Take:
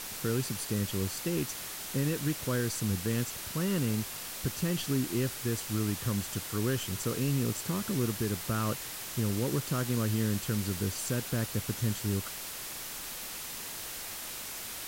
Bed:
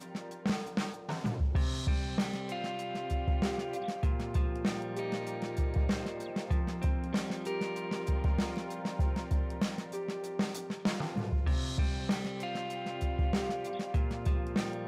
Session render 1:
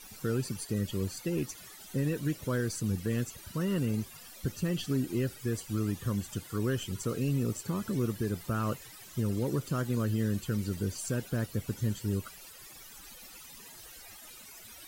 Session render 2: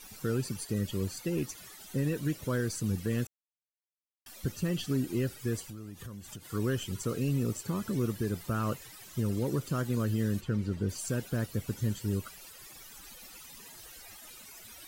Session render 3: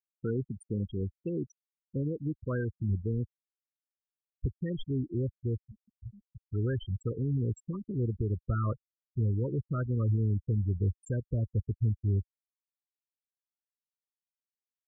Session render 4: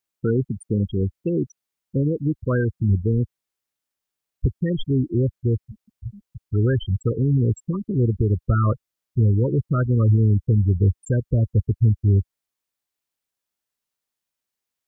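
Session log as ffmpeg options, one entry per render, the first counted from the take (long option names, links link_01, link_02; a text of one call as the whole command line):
ffmpeg -i in.wav -af "afftdn=noise_reduction=16:noise_floor=-41" out.wav
ffmpeg -i in.wav -filter_complex "[0:a]asettb=1/sr,asplit=3[link_01][link_02][link_03];[link_01]atrim=end=5.604[link_04];[link_02]atrim=start=5.6:end=6.52,asetpts=PTS-STARTPTS,afade=type=in:duration=0.004:curve=qsin,afade=type=out:start_time=0.916:duration=0.004:curve=qsin,acompressor=threshold=-40dB:ratio=8:attack=3.2:release=140:knee=1:detection=peak[link_05];[link_03]atrim=start=6.516[link_06];[link_04][link_05]acrossfade=duration=0.004:curve1=hsin:curve2=qsin[link_07];[link_07][link_06]acrossfade=duration=0.004:curve1=qsin:curve2=hsin,asplit=3[link_08][link_09][link_10];[link_08]afade=type=out:start_time=10.4:duration=0.02[link_11];[link_09]aemphasis=mode=reproduction:type=75fm,afade=type=in:start_time=10.4:duration=0.02,afade=type=out:start_time=10.88:duration=0.02[link_12];[link_10]afade=type=in:start_time=10.88:duration=0.02[link_13];[link_11][link_12][link_13]amix=inputs=3:normalize=0,asplit=3[link_14][link_15][link_16];[link_14]atrim=end=3.27,asetpts=PTS-STARTPTS,afade=type=out:start_time=3.266:duration=0.004:curve=hsin[link_17];[link_15]atrim=start=3.27:end=4.26,asetpts=PTS-STARTPTS,volume=0[link_18];[link_16]atrim=start=4.26,asetpts=PTS-STARTPTS,afade=type=in:duration=0.004:curve=hsin[link_19];[link_17][link_18][link_19]concat=n=3:v=0:a=1" out.wav
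ffmpeg -i in.wav -af "afftfilt=real='re*gte(hypot(re,im),0.0631)':imag='im*gte(hypot(re,im),0.0631)':win_size=1024:overlap=0.75,asubboost=boost=7:cutoff=71" out.wav
ffmpeg -i in.wav -af "volume=11dB" out.wav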